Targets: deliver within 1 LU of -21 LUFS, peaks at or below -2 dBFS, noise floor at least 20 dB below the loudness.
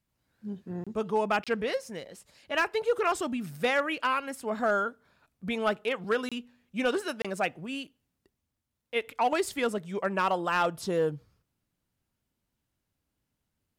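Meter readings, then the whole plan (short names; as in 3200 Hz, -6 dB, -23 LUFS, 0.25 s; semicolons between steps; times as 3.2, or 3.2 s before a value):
clipped 0.3%; flat tops at -18.5 dBFS; dropouts 4; longest dropout 26 ms; loudness -30.0 LUFS; peak -18.5 dBFS; loudness target -21.0 LUFS
-> clip repair -18.5 dBFS; interpolate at 0.84/1.44/6.29/7.22, 26 ms; gain +9 dB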